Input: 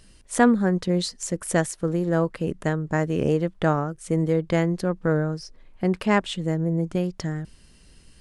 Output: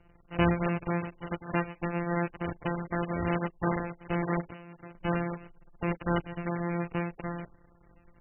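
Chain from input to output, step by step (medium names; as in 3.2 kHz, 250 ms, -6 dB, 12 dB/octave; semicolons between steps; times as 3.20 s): sorted samples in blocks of 256 samples; 4.44–4.95 s: compression 8:1, threshold -36 dBFS, peak gain reduction 19.5 dB; trim -7 dB; MP3 8 kbps 16 kHz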